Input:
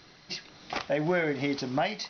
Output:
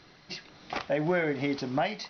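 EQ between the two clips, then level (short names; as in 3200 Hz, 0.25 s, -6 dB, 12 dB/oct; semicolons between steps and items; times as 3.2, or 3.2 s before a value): high shelf 5700 Hz -9.5 dB; 0.0 dB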